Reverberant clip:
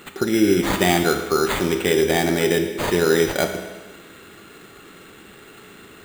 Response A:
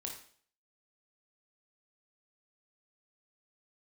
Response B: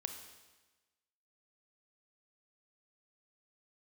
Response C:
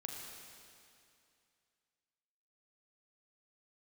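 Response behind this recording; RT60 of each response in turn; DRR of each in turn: B; 0.50 s, 1.2 s, 2.5 s; 0.0 dB, 5.5 dB, -0.5 dB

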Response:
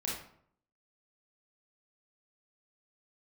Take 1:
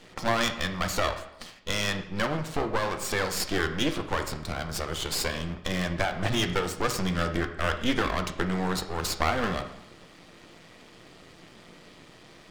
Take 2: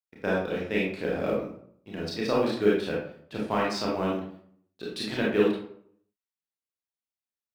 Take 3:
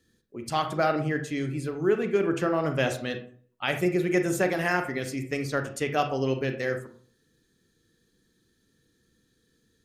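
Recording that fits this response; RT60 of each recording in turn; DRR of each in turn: 2; 0.90 s, 0.65 s, 0.50 s; 6.5 dB, -4.5 dB, 6.5 dB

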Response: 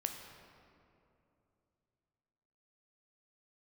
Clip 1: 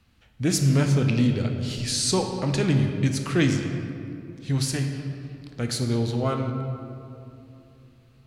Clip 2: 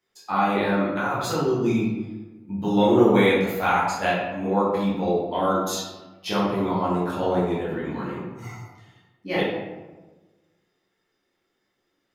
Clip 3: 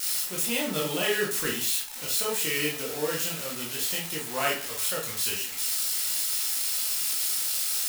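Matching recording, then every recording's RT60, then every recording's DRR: 1; 2.8 s, 1.2 s, 0.45 s; 4.0 dB, -8.5 dB, -4.0 dB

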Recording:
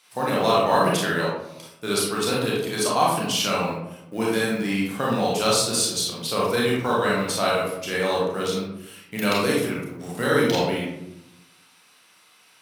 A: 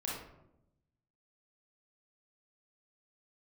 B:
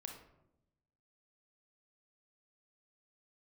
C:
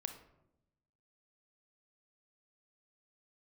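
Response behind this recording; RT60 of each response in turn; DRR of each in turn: A; 0.85 s, 0.85 s, 0.85 s; -5.0 dB, 2.5 dB, 7.0 dB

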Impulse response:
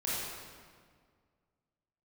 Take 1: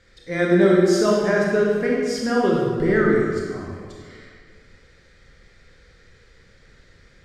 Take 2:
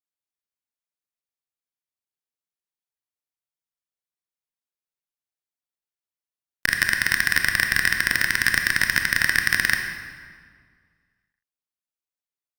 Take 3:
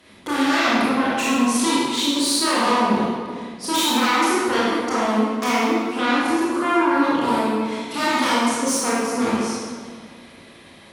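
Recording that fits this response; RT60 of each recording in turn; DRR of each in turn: 3; 1.9 s, 1.9 s, 1.9 s; -3.5 dB, 4.0 dB, -8.5 dB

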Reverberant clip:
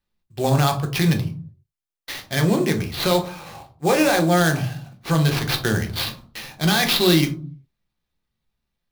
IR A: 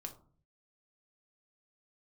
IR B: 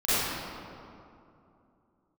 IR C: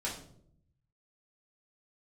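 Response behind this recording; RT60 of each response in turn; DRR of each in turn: A; 0.45 s, 2.7 s, 0.65 s; 3.5 dB, -16.0 dB, -6.0 dB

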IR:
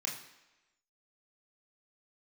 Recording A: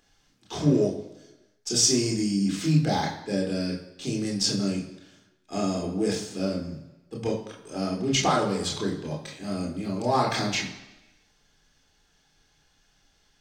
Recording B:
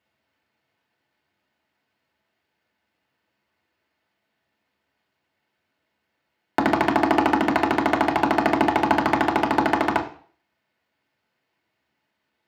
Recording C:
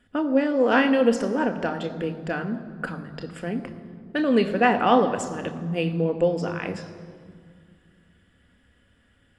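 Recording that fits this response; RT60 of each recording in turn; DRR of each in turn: A; 1.0 s, 0.45 s, 2.1 s; -2.0 dB, -1.0 dB, 6.5 dB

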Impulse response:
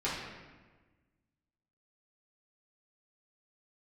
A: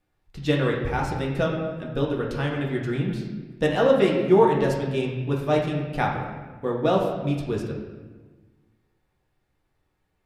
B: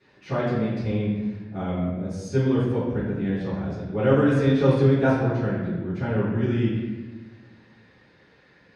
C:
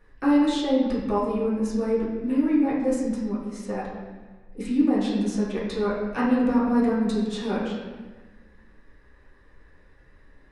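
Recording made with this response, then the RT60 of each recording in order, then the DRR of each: C; 1.3 s, 1.3 s, 1.3 s; -2.0 dB, -18.0 dB, -9.5 dB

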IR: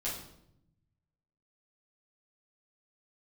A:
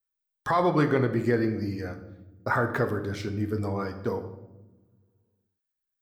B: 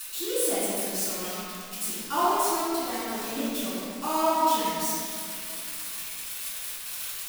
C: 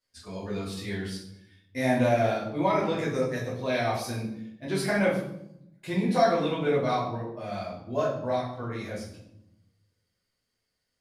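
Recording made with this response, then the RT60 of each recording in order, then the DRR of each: C; no single decay rate, 2.4 s, 0.75 s; 6.0 dB, -13.0 dB, -8.0 dB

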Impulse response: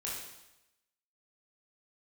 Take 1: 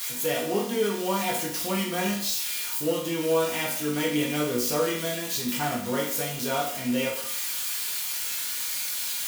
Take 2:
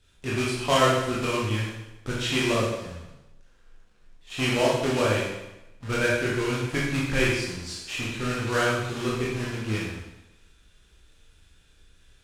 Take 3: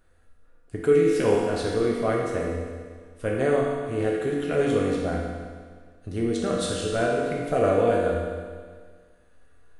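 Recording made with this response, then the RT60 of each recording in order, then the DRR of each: 2; 0.60 s, 0.90 s, 1.7 s; -5.0 dB, -5.5 dB, -3.5 dB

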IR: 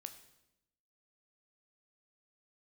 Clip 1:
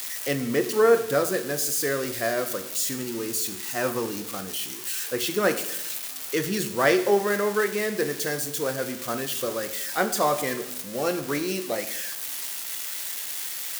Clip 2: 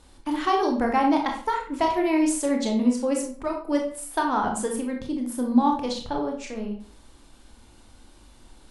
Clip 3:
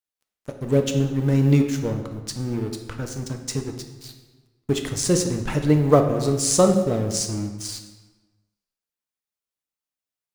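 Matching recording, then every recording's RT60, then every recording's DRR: 1; 0.85 s, 0.50 s, 1.3 s; 7.5 dB, 1.5 dB, 4.0 dB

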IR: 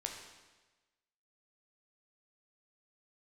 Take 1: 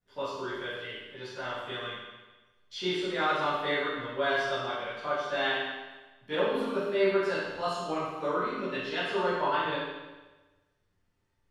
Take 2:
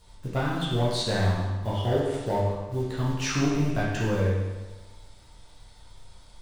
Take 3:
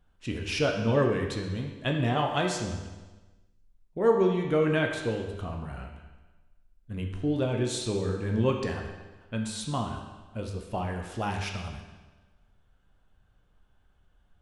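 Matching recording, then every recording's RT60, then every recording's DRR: 3; 1.2 s, 1.2 s, 1.2 s; -14.0 dB, -7.5 dB, 1.5 dB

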